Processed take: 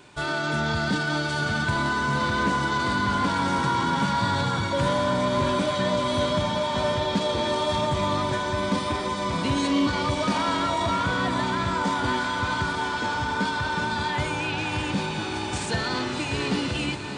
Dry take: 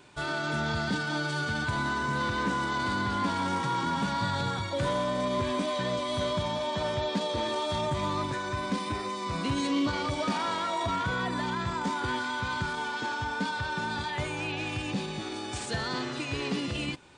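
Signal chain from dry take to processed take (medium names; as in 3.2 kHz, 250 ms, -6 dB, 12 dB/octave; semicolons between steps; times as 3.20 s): echo that smears into a reverb 691 ms, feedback 73%, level -9.5 dB; trim +4.5 dB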